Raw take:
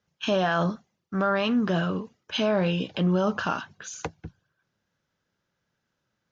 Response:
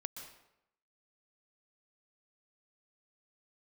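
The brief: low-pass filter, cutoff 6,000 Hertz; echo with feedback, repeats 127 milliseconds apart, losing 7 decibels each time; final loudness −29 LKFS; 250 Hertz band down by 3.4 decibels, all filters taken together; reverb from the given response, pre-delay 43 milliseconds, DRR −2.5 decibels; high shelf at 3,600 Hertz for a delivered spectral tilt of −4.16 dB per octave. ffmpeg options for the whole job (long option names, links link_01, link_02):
-filter_complex "[0:a]lowpass=6000,equalizer=frequency=250:width_type=o:gain=-5,highshelf=frequency=3600:gain=-6,aecho=1:1:127|254|381|508|635:0.447|0.201|0.0905|0.0407|0.0183,asplit=2[link_01][link_02];[1:a]atrim=start_sample=2205,adelay=43[link_03];[link_02][link_03]afir=irnorm=-1:irlink=0,volume=4.5dB[link_04];[link_01][link_04]amix=inputs=2:normalize=0,volume=-5.5dB"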